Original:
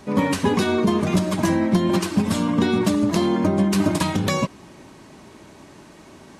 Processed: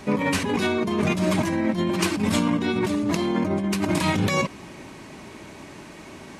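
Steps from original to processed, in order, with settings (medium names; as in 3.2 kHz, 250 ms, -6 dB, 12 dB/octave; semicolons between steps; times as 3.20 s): peaking EQ 2.3 kHz +5.5 dB 0.61 oct; compressor with a negative ratio -23 dBFS, ratio -1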